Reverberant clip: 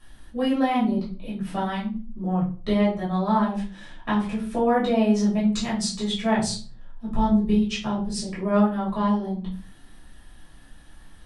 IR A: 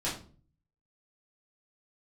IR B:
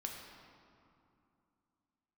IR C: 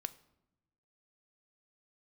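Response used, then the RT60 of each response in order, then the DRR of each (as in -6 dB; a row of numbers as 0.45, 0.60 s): A; 0.40, 2.6, 0.90 s; -8.5, 0.0, 11.0 dB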